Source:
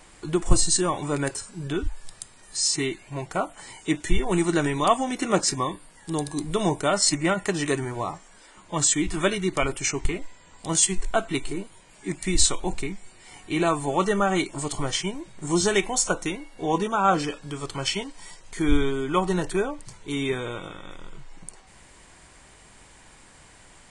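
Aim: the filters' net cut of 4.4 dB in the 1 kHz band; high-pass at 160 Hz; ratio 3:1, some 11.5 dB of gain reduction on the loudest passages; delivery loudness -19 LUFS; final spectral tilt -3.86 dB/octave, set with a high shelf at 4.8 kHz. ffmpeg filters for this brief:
-af "highpass=160,equalizer=f=1000:t=o:g=-5.5,highshelf=f=4800:g=-7.5,acompressor=threshold=0.0178:ratio=3,volume=7.94"

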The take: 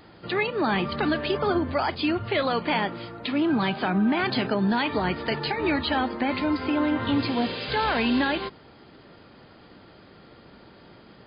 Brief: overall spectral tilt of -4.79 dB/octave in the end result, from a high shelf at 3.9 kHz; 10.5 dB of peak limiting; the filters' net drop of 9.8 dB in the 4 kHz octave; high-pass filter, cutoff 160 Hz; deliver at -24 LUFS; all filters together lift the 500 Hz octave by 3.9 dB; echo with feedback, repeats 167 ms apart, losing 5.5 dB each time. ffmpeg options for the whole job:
-af "highpass=160,equalizer=f=500:t=o:g=5.5,highshelf=f=3900:g=-8.5,equalizer=f=4000:t=o:g=-8.5,alimiter=limit=0.0841:level=0:latency=1,aecho=1:1:167|334|501|668|835|1002|1169:0.531|0.281|0.149|0.079|0.0419|0.0222|0.0118,volume=1.68"

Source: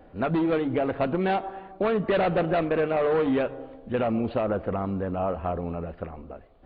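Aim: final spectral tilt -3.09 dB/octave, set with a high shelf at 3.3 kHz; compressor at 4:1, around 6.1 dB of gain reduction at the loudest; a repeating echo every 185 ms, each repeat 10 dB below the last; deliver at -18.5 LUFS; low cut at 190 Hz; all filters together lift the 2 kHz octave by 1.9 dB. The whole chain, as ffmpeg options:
-af "highpass=190,equalizer=f=2000:t=o:g=5,highshelf=f=3300:g=-8.5,acompressor=threshold=0.0447:ratio=4,aecho=1:1:185|370|555|740:0.316|0.101|0.0324|0.0104,volume=4.47"

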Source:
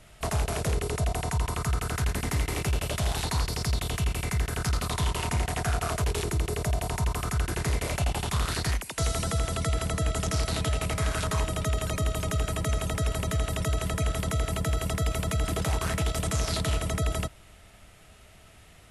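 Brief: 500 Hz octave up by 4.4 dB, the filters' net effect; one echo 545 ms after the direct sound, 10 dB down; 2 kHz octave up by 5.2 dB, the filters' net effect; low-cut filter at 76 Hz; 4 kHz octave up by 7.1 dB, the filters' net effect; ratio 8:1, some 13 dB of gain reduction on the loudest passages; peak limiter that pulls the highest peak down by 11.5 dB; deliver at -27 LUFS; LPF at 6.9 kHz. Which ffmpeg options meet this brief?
-af "highpass=76,lowpass=6900,equalizer=f=500:t=o:g=5.5,equalizer=f=2000:t=o:g=4,equalizer=f=4000:t=o:g=8,acompressor=threshold=0.0141:ratio=8,alimiter=level_in=2.51:limit=0.0631:level=0:latency=1,volume=0.398,aecho=1:1:545:0.316,volume=5.62"

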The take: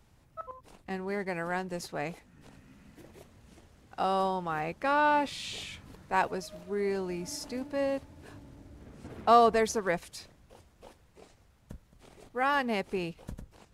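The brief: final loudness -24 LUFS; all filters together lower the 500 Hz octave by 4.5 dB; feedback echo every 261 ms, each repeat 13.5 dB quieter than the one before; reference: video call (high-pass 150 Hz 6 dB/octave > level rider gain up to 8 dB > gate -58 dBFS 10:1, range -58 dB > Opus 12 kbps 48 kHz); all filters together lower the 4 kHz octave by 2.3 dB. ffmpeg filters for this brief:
-af "highpass=f=150:p=1,equalizer=f=500:t=o:g=-5.5,equalizer=f=4000:t=o:g=-3,aecho=1:1:261|522:0.211|0.0444,dynaudnorm=m=2.51,agate=range=0.00126:threshold=0.00126:ratio=10,volume=2.99" -ar 48000 -c:a libopus -b:a 12k

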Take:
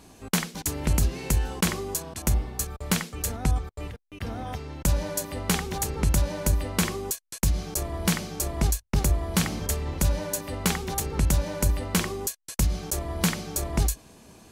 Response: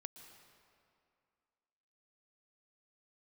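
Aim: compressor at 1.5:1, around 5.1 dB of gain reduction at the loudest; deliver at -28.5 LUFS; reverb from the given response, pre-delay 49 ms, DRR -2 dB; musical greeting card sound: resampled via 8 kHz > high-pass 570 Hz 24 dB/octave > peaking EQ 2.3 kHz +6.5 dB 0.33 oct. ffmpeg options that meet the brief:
-filter_complex "[0:a]acompressor=threshold=0.0251:ratio=1.5,asplit=2[s0][s1];[1:a]atrim=start_sample=2205,adelay=49[s2];[s1][s2]afir=irnorm=-1:irlink=0,volume=2.24[s3];[s0][s3]amix=inputs=2:normalize=0,aresample=8000,aresample=44100,highpass=f=570:w=0.5412,highpass=f=570:w=1.3066,equalizer=f=2300:t=o:w=0.33:g=6.5,volume=2"

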